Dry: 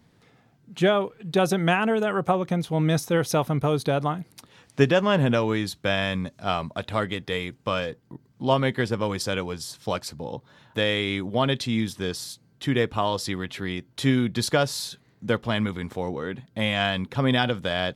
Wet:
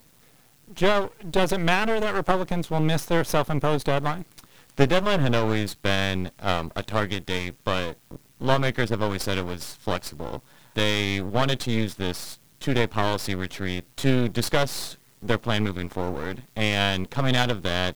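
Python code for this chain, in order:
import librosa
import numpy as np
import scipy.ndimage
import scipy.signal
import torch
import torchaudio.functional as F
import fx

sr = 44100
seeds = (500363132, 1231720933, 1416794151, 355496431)

y = fx.quant_dither(x, sr, seeds[0], bits=10, dither='triangular')
y = np.maximum(y, 0.0)
y = y * librosa.db_to_amplitude(3.5)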